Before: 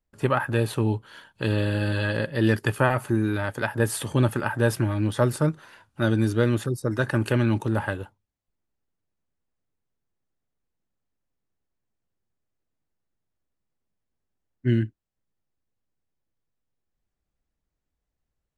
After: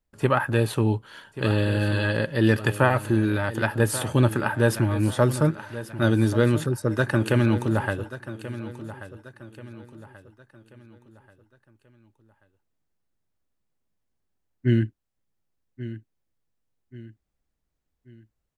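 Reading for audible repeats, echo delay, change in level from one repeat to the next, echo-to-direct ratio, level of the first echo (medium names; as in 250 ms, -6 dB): 3, 1134 ms, -8.0 dB, -13.0 dB, -14.0 dB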